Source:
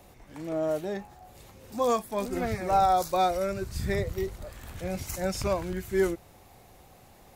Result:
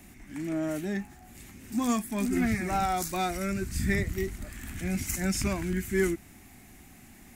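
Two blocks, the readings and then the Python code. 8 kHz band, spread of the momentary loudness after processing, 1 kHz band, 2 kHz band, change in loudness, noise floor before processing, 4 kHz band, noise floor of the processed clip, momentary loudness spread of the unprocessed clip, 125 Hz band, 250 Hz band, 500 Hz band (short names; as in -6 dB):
+5.5 dB, 13 LU, -6.0 dB, +4.5 dB, -1.5 dB, -55 dBFS, 0.0 dB, -52 dBFS, 15 LU, +2.5 dB, +5.0 dB, -5.5 dB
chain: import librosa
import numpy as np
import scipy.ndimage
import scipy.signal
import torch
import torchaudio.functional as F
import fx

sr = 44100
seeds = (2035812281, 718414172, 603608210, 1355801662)

p1 = fx.peak_eq(x, sr, hz=510.0, db=-10.0, octaves=0.26)
p2 = 10.0 ** (-27.0 / 20.0) * np.tanh(p1 / 10.0 ** (-27.0 / 20.0))
p3 = p1 + F.gain(torch.from_numpy(p2), -7.5).numpy()
y = fx.graphic_eq(p3, sr, hz=(125, 250, 500, 1000, 2000, 4000, 8000), db=(-4, 10, -10, -8, 7, -6, 5))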